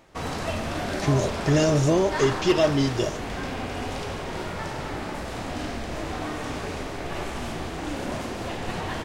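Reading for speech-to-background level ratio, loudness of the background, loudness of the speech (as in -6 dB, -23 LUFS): 8.5 dB, -31.5 LUFS, -23.0 LUFS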